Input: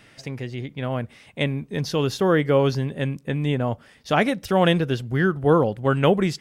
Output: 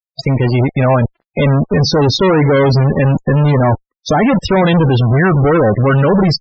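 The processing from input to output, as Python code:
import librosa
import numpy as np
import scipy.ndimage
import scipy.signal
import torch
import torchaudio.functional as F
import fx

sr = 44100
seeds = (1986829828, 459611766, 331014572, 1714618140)

y = fx.fuzz(x, sr, gain_db=37.0, gate_db=-40.0)
y = fx.spec_topn(y, sr, count=32)
y = fx.dynamic_eq(y, sr, hz=660.0, q=2.1, threshold_db=-33.0, ratio=4.0, max_db=3, at=(0.52, 0.97))
y = F.gain(torch.from_numpy(y), 4.5).numpy()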